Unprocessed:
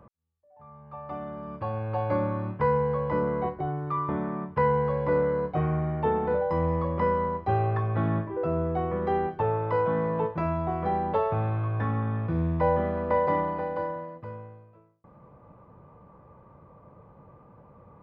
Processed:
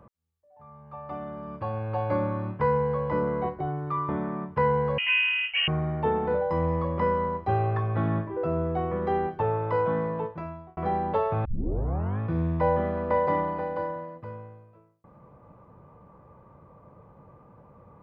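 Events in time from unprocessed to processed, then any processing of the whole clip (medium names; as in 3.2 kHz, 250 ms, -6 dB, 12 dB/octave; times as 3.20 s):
4.98–5.68 s: frequency inversion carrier 3 kHz
9.92–10.77 s: fade out
11.45 s: tape start 0.75 s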